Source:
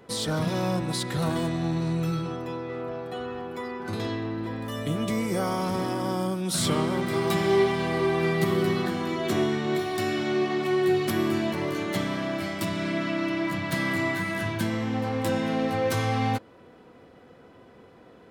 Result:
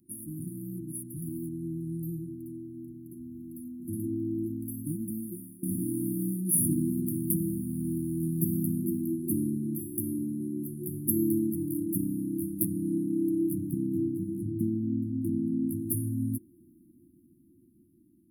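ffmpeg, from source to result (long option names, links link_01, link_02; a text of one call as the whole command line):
ffmpeg -i in.wav -filter_complex "[0:a]asettb=1/sr,asplit=3[link_01][link_02][link_03];[link_01]atrim=end=13.714[link_04];[link_02]atrim=start=13.71:end=15.69,asetpts=PTS-STARTPTS,afade=type=in:duration=0.004:curve=qsin,afade=type=out:start_time=1.976:duration=0.004:curve=qsin,lowpass=frequency=1100:poles=1[link_05];[link_03]atrim=start=15.686[link_06];[link_04][link_05]acrossfade=duration=0.004:curve1=hsin:curve2=qsin[link_07];[link_07][link_06]acrossfade=duration=0.004:curve1=qsin:curve2=hsin,asplit=2[link_08][link_09];[link_08]atrim=end=5.63,asetpts=PTS-STARTPTS,afade=type=out:start_time=4.47:duration=1.16:silence=0.0707946[link_10];[link_09]atrim=start=5.63,asetpts=PTS-STARTPTS,afade=type=in:duration=0.004:curve=hsin:silence=0.0707946[link_11];[link_10][link_11]concat=n=2:v=0:a=1,bass=frequency=250:gain=-7,treble=frequency=4000:gain=9,afftfilt=real='re*(1-between(b*sr/4096,360,9600))':imag='im*(1-between(b*sr/4096,360,9600))':win_size=4096:overlap=0.75,dynaudnorm=framelen=870:gausssize=7:maxgain=9dB,volume=-5dB" out.wav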